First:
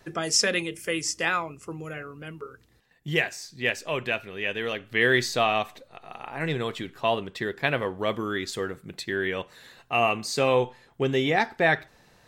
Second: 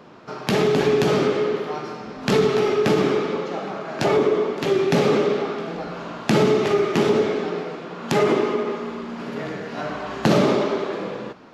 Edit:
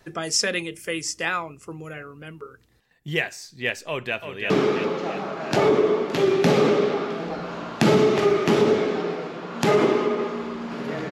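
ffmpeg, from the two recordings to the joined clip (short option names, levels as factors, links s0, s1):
-filter_complex "[0:a]apad=whole_dur=11.11,atrim=end=11.11,atrim=end=4.502[s0];[1:a]atrim=start=2.978:end=9.59[s1];[s0][s1]acrossfade=d=0.004:c1=hsin:c2=hsin,asplit=2[s2][s3];[s3]afade=t=in:st=3.87:d=0.01,afade=t=out:st=4.5:d=0.01,aecho=0:1:340|680|1020|1360|1700|2040|2380:0.421697|0.231933|0.127563|0.0701598|0.0385879|0.0212233|0.0116728[s4];[s2][s4]amix=inputs=2:normalize=0"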